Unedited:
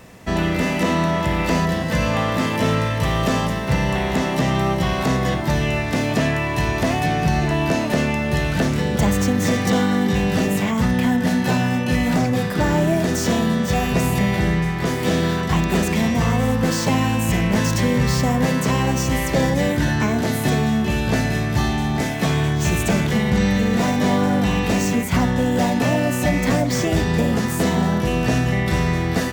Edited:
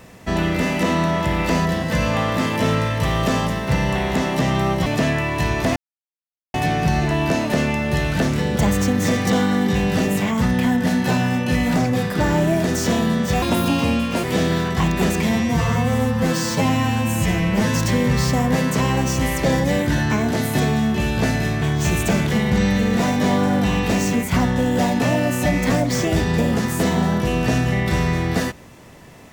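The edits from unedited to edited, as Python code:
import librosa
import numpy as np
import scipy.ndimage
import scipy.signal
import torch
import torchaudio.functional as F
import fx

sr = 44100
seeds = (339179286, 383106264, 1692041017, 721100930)

y = fx.edit(x, sr, fx.cut(start_s=4.86, length_s=1.18),
    fx.insert_silence(at_s=6.94, length_s=0.78),
    fx.speed_span(start_s=13.82, length_s=1.14, speed=1.4),
    fx.stretch_span(start_s=16.0, length_s=1.65, factor=1.5),
    fx.cut(start_s=21.52, length_s=0.9), tone=tone)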